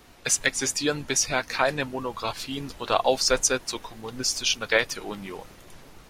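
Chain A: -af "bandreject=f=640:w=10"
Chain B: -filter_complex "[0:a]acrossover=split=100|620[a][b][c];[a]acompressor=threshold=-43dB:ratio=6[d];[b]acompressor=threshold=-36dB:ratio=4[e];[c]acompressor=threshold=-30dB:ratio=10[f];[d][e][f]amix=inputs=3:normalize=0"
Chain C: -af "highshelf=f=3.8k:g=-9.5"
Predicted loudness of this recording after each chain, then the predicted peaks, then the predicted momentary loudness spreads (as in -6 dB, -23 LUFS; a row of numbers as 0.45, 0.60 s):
-25.5, -33.5, -28.0 LUFS; -6.0, -14.0, -8.0 dBFS; 13, 8, 13 LU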